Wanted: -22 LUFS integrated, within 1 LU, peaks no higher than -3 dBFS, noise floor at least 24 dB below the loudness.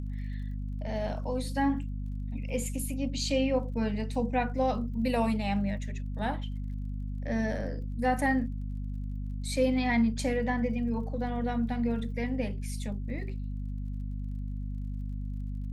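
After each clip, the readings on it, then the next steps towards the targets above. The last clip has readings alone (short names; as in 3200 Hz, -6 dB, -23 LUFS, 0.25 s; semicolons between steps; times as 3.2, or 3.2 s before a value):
ticks 39/s; hum 50 Hz; harmonics up to 250 Hz; hum level -32 dBFS; loudness -32.0 LUFS; peak -15.5 dBFS; loudness target -22.0 LUFS
-> de-click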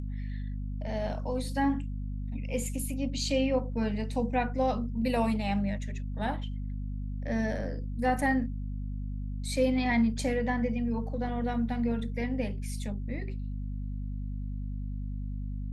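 ticks 0.064/s; hum 50 Hz; harmonics up to 250 Hz; hum level -32 dBFS
-> notches 50/100/150/200/250 Hz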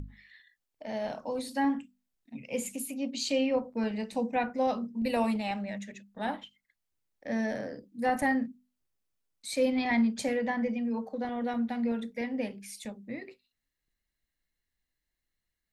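hum none; loudness -32.0 LUFS; peak -16.0 dBFS; loudness target -22.0 LUFS
-> gain +10 dB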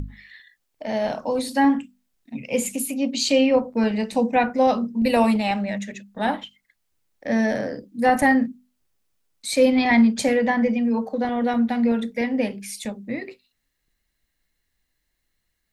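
loudness -22.0 LUFS; peak -6.0 dBFS; noise floor -75 dBFS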